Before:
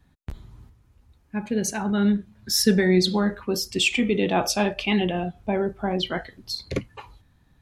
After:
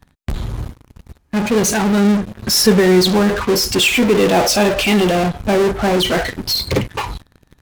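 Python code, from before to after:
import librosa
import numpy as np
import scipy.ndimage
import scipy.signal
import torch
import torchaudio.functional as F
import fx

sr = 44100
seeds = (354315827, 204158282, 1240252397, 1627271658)

p1 = fx.dynamic_eq(x, sr, hz=480.0, q=1.8, threshold_db=-37.0, ratio=4.0, max_db=6)
p2 = fx.fuzz(p1, sr, gain_db=44.0, gate_db=-53.0)
p3 = p1 + (p2 * 10.0 ** (-7.5 / 20.0))
y = p3 * 10.0 ** (2.0 / 20.0)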